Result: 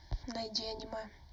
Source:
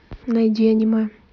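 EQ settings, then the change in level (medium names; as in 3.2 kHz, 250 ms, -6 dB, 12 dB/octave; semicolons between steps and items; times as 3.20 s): treble shelf 2.4 kHz +8.5 dB; static phaser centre 530 Hz, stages 4; static phaser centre 1.1 kHz, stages 4; +1.0 dB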